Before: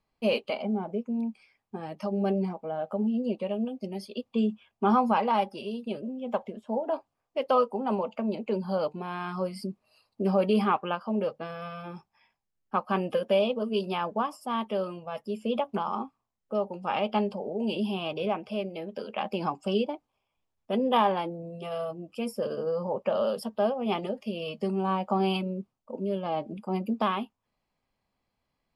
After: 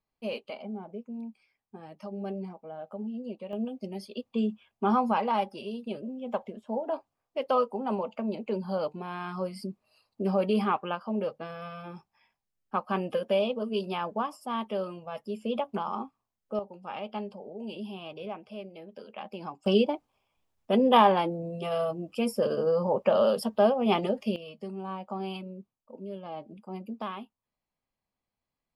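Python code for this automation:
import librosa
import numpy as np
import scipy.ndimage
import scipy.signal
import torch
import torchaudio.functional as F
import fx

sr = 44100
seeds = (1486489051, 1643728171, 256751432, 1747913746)

y = fx.gain(x, sr, db=fx.steps((0.0, -8.5), (3.53, -2.0), (16.59, -9.0), (19.66, 4.0), (24.36, -9.0)))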